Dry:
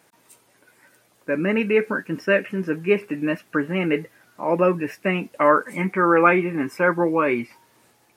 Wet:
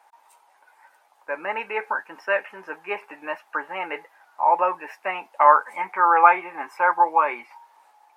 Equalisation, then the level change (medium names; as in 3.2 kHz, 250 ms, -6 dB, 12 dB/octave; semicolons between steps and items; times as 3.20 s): resonant high-pass 850 Hz, resonance Q 6.4; treble shelf 3.5 kHz -7.5 dB; -3.0 dB